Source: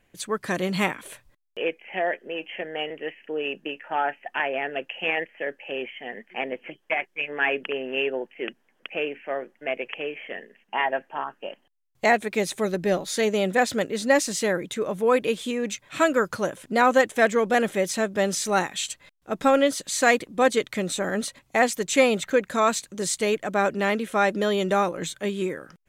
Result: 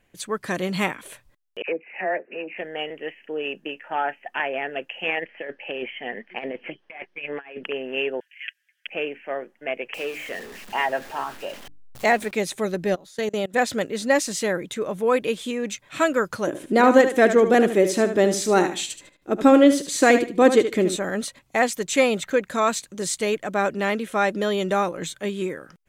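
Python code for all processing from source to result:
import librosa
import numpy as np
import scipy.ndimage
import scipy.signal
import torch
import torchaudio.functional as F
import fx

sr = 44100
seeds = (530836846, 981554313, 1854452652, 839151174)

y = fx.chain(x, sr, fx.highpass(hz=150.0, slope=12),
    fx.dispersion(late='lows', ms=68.0, hz=1400.0),
    fx.resample_bad(factor=8, down='none', up='filtered'), at=(1.62, 2.58))
y = fx.chain(y, sr, fx.savgol(points=15),
    fx.over_compress(threshold_db=-31.0, ratio=-0.5), at=(5.19, 7.64))
y = fx.chain(y, sr, fx.cheby1_highpass(hz=1600.0, order=5),
    fx.comb(ms=6.1, depth=0.99), at=(8.2, 8.87))
y = fx.chain(y, sr, fx.zero_step(step_db=-35.5),
    fx.hum_notches(base_hz=50, count=6), at=(9.94, 12.31))
y = fx.chain(y, sr, fx.peak_eq(hz=2300.0, db=-4.0, octaves=0.25),
    fx.level_steps(step_db=24),
    fx.quant_float(bits=6), at=(12.94, 13.54))
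y = fx.chain(y, sr, fx.peak_eq(hz=330.0, db=13.5, octaves=0.87),
    fx.echo_feedback(ms=75, feedback_pct=23, wet_db=-10.0), at=(16.47, 20.97))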